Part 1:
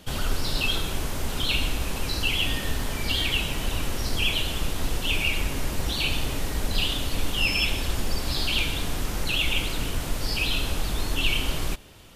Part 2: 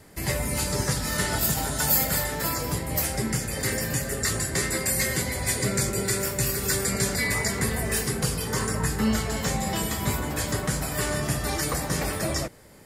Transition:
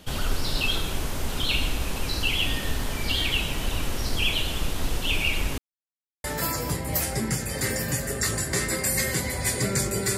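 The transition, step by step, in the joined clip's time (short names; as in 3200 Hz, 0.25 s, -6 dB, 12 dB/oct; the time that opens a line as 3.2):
part 1
5.58–6.24 mute
6.24 switch to part 2 from 2.26 s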